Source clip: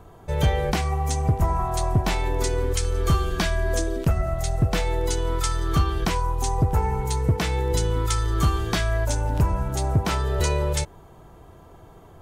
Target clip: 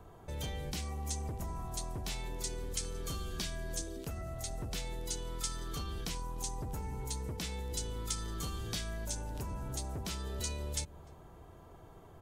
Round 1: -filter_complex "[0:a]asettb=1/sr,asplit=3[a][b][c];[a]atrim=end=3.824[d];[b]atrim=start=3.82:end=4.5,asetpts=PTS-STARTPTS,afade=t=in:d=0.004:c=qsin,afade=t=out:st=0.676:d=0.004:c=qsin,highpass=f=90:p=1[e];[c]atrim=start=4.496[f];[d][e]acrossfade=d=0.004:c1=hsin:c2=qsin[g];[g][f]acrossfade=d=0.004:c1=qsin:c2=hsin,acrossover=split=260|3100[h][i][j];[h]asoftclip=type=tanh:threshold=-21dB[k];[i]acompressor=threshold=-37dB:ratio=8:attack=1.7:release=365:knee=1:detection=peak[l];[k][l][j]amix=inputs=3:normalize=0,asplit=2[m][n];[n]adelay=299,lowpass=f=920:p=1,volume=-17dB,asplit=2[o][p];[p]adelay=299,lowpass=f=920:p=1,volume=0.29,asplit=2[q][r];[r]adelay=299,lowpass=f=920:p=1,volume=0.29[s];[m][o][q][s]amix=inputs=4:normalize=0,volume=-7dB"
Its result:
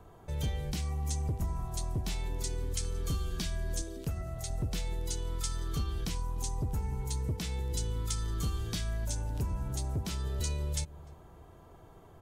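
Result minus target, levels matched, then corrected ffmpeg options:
soft clip: distortion -6 dB
-filter_complex "[0:a]asettb=1/sr,asplit=3[a][b][c];[a]atrim=end=3.824[d];[b]atrim=start=3.82:end=4.5,asetpts=PTS-STARTPTS,afade=t=in:d=0.004:c=qsin,afade=t=out:st=0.676:d=0.004:c=qsin,highpass=f=90:p=1[e];[c]atrim=start=4.496[f];[d][e]acrossfade=d=0.004:c1=hsin:c2=qsin[g];[g][f]acrossfade=d=0.004:c1=qsin:c2=hsin,acrossover=split=260|3100[h][i][j];[h]asoftclip=type=tanh:threshold=-31dB[k];[i]acompressor=threshold=-37dB:ratio=8:attack=1.7:release=365:knee=1:detection=peak[l];[k][l][j]amix=inputs=3:normalize=0,asplit=2[m][n];[n]adelay=299,lowpass=f=920:p=1,volume=-17dB,asplit=2[o][p];[p]adelay=299,lowpass=f=920:p=1,volume=0.29,asplit=2[q][r];[r]adelay=299,lowpass=f=920:p=1,volume=0.29[s];[m][o][q][s]amix=inputs=4:normalize=0,volume=-7dB"

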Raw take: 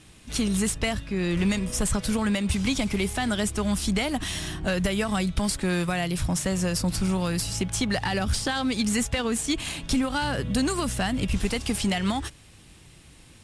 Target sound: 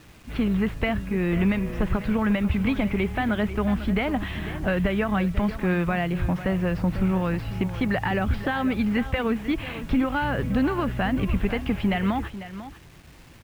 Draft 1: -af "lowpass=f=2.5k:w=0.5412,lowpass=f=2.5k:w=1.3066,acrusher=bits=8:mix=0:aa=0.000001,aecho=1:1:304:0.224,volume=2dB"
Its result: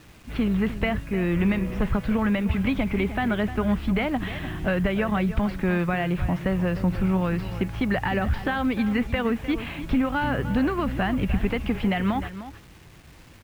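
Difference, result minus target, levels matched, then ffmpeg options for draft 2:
echo 0.192 s early
-af "lowpass=f=2.5k:w=0.5412,lowpass=f=2.5k:w=1.3066,acrusher=bits=8:mix=0:aa=0.000001,aecho=1:1:496:0.224,volume=2dB"

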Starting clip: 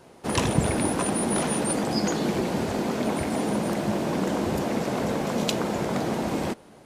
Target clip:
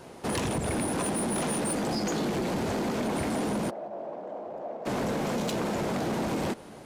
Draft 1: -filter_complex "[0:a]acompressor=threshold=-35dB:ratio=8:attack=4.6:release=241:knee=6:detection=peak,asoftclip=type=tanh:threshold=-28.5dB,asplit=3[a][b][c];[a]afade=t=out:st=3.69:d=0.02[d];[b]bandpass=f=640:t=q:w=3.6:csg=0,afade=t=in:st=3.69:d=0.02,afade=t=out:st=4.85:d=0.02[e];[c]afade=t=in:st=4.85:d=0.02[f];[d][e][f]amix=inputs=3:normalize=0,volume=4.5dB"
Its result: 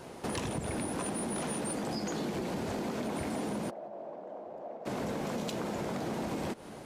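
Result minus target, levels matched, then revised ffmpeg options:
compressor: peak gain reduction +8.5 dB
-filter_complex "[0:a]acompressor=threshold=-25.5dB:ratio=8:attack=4.6:release=241:knee=6:detection=peak,asoftclip=type=tanh:threshold=-28.5dB,asplit=3[a][b][c];[a]afade=t=out:st=3.69:d=0.02[d];[b]bandpass=f=640:t=q:w=3.6:csg=0,afade=t=in:st=3.69:d=0.02,afade=t=out:st=4.85:d=0.02[e];[c]afade=t=in:st=4.85:d=0.02[f];[d][e][f]amix=inputs=3:normalize=0,volume=4.5dB"

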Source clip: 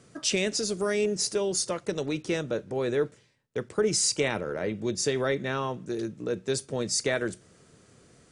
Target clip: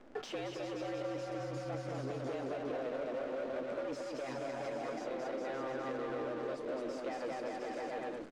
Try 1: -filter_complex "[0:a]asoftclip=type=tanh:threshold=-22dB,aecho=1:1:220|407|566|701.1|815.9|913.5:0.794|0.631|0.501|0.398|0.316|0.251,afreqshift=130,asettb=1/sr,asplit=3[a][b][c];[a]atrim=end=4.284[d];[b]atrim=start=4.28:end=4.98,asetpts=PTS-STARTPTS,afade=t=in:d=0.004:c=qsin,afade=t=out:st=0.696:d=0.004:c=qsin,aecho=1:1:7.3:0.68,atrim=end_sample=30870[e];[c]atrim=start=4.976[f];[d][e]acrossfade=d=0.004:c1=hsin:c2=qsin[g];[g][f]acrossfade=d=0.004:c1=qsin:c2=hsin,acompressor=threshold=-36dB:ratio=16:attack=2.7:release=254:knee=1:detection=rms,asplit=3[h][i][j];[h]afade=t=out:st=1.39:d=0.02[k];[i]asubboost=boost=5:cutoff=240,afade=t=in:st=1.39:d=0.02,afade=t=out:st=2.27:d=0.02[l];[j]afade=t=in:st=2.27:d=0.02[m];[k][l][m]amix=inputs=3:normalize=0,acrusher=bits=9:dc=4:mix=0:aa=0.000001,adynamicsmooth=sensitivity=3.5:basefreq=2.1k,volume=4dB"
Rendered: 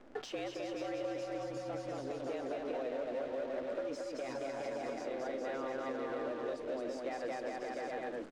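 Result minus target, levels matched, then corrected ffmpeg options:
soft clip: distortion -8 dB
-filter_complex "[0:a]asoftclip=type=tanh:threshold=-32dB,aecho=1:1:220|407|566|701.1|815.9|913.5:0.794|0.631|0.501|0.398|0.316|0.251,afreqshift=130,asettb=1/sr,asplit=3[a][b][c];[a]atrim=end=4.284[d];[b]atrim=start=4.28:end=4.98,asetpts=PTS-STARTPTS,afade=t=in:d=0.004:c=qsin,afade=t=out:st=0.696:d=0.004:c=qsin,aecho=1:1:7.3:0.68,atrim=end_sample=30870[e];[c]atrim=start=4.976[f];[d][e]acrossfade=d=0.004:c1=hsin:c2=qsin[g];[g][f]acrossfade=d=0.004:c1=qsin:c2=hsin,acompressor=threshold=-36dB:ratio=16:attack=2.7:release=254:knee=1:detection=rms,asplit=3[h][i][j];[h]afade=t=out:st=1.39:d=0.02[k];[i]asubboost=boost=5:cutoff=240,afade=t=in:st=1.39:d=0.02,afade=t=out:st=2.27:d=0.02[l];[j]afade=t=in:st=2.27:d=0.02[m];[k][l][m]amix=inputs=3:normalize=0,acrusher=bits=9:dc=4:mix=0:aa=0.000001,adynamicsmooth=sensitivity=3.5:basefreq=2.1k,volume=4dB"

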